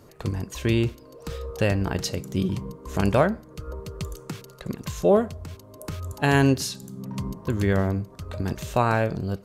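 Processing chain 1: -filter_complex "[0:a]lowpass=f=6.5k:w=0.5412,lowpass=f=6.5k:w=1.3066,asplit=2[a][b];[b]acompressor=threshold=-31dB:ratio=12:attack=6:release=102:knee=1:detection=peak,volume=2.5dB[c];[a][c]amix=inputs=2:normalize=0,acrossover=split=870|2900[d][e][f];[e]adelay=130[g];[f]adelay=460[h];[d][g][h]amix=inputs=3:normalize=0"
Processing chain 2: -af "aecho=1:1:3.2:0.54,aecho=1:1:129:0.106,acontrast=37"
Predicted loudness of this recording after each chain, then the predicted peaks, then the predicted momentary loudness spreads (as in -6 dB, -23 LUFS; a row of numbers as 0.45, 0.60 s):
-24.0, -20.0 LUFS; -5.0, -2.5 dBFS; 11, 16 LU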